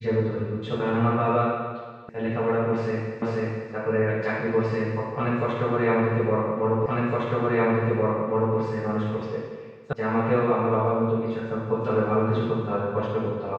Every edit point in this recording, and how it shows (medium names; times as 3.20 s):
2.09 s: sound stops dead
3.22 s: repeat of the last 0.49 s
6.86 s: repeat of the last 1.71 s
9.93 s: sound stops dead